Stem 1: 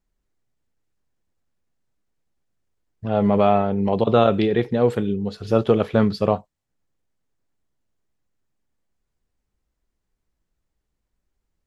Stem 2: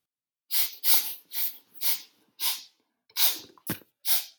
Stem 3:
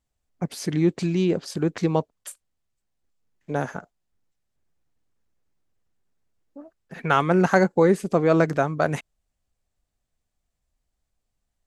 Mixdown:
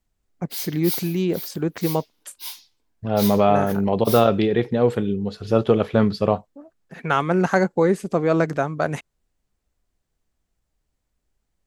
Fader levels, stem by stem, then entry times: 0.0, −6.5, −0.5 decibels; 0.00, 0.00, 0.00 seconds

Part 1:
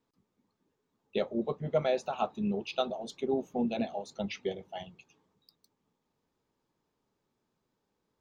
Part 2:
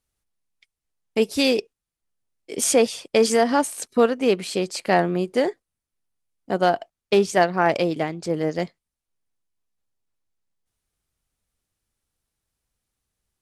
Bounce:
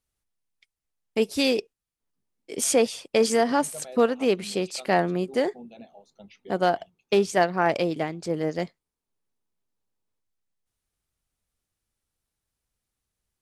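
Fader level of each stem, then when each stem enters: −13.5, −3.0 decibels; 2.00, 0.00 seconds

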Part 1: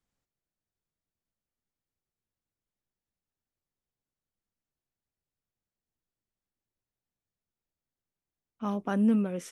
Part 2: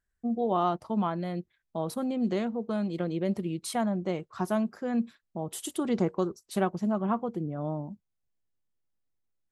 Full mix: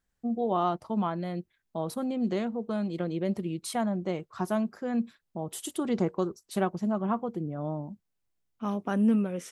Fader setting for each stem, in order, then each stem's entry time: +0.5, −0.5 decibels; 0.00, 0.00 seconds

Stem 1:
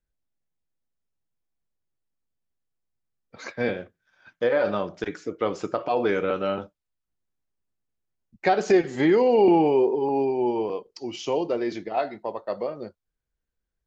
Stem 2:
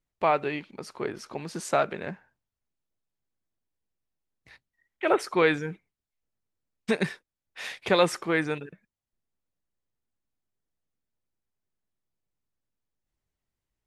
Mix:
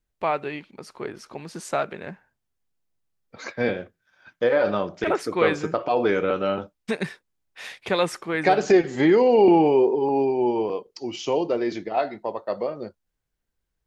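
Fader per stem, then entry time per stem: +2.0, −1.0 decibels; 0.00, 0.00 seconds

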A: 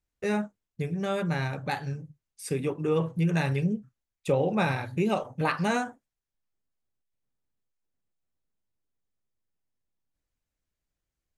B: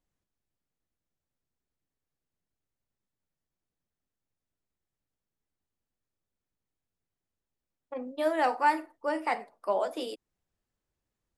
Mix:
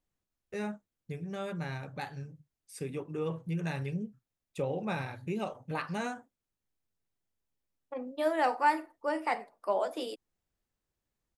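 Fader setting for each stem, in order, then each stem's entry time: −8.5, −1.5 decibels; 0.30, 0.00 seconds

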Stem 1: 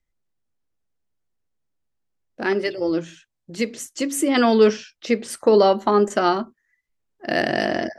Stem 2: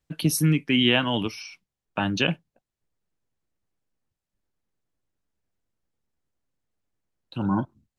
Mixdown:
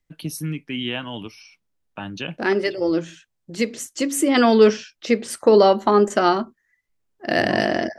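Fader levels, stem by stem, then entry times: +1.5, −7.0 decibels; 0.00, 0.00 seconds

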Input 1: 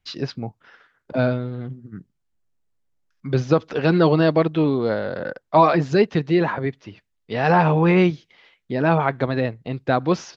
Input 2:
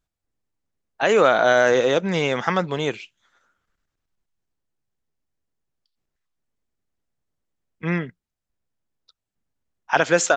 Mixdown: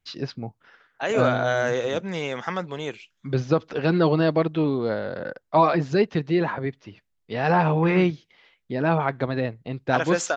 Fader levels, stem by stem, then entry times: −3.5, −7.0 decibels; 0.00, 0.00 seconds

